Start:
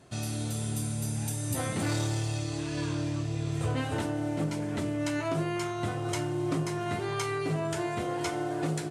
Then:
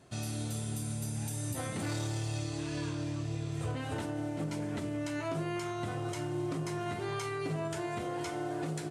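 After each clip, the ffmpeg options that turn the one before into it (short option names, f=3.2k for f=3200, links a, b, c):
-af "alimiter=limit=-24dB:level=0:latency=1:release=84,volume=-3dB"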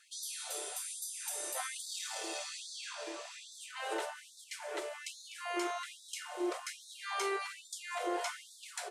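-af "afftfilt=real='re*gte(b*sr/1024,320*pow(3500/320,0.5+0.5*sin(2*PI*1.2*pts/sr)))':imag='im*gte(b*sr/1024,320*pow(3500/320,0.5+0.5*sin(2*PI*1.2*pts/sr)))':win_size=1024:overlap=0.75,volume=3.5dB"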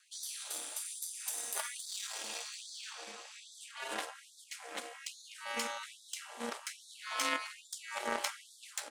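-af "aeval=exprs='0.0708*(cos(1*acos(clip(val(0)/0.0708,-1,1)))-cos(1*PI/2))+0.0158*(cos(3*acos(clip(val(0)/0.0708,-1,1)))-cos(3*PI/2))+0.000708*(cos(7*acos(clip(val(0)/0.0708,-1,1)))-cos(7*PI/2))':c=same,highpass=f=1.2k:p=1,aeval=exprs='val(0)*sin(2*PI*120*n/s)':c=same,volume=12.5dB"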